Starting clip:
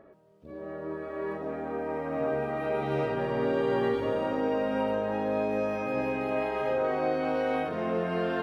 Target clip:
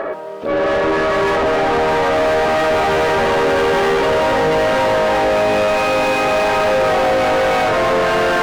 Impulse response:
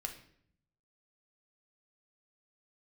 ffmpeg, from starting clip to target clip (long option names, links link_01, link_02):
-filter_complex "[0:a]equalizer=frequency=130:width=0.53:gain=-11.5,asplit=2[link_01][link_02];[link_02]highpass=frequency=720:poles=1,volume=40dB,asoftclip=type=tanh:threshold=-15.5dB[link_03];[link_01][link_03]amix=inputs=2:normalize=0,lowpass=frequency=1700:poles=1,volume=-6dB,volume=7.5dB"